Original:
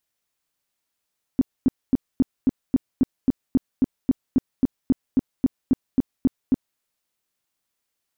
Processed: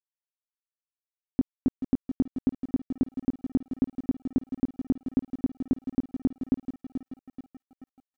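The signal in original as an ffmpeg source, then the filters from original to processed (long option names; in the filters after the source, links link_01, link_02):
-f lavfi -i "aevalsrc='0.237*sin(2*PI*261*mod(t,0.27))*lt(mod(t,0.27),6/261)':duration=5.4:sample_rate=44100"
-filter_complex "[0:a]asplit=2[link_01][link_02];[link_02]aecho=0:1:432|864|1296|1728|2160:0.251|0.118|0.0555|0.0261|0.0123[link_03];[link_01][link_03]amix=inputs=2:normalize=0,aeval=exprs='sgn(val(0))*max(abs(val(0))-0.00282,0)':channel_layout=same,acompressor=threshold=-21dB:ratio=6"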